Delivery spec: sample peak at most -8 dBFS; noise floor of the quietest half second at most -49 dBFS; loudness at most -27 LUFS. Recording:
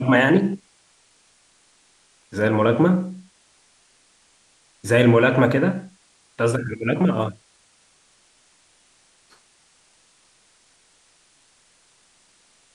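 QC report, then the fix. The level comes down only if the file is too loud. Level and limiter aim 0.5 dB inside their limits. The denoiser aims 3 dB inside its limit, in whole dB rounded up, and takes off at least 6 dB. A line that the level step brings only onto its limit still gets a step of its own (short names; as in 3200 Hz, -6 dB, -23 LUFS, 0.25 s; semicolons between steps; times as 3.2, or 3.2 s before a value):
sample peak -3.0 dBFS: fail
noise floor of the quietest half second -59 dBFS: OK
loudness -20.0 LUFS: fail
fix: gain -7.5 dB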